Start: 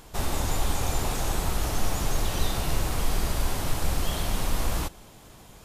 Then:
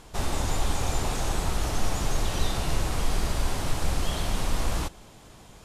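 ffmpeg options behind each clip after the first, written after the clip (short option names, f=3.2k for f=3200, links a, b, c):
-af "lowpass=10k"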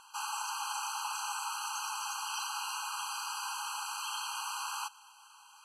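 -af "afftfilt=real='re*eq(mod(floor(b*sr/1024/810),2),1)':imag='im*eq(mod(floor(b*sr/1024/810),2),1)':win_size=1024:overlap=0.75"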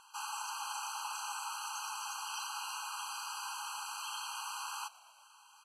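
-filter_complex "[0:a]asplit=4[a][b][c][d];[b]adelay=117,afreqshift=-85,volume=-23dB[e];[c]adelay=234,afreqshift=-170,volume=-28.8dB[f];[d]adelay=351,afreqshift=-255,volume=-34.7dB[g];[a][e][f][g]amix=inputs=4:normalize=0,volume=-3.5dB"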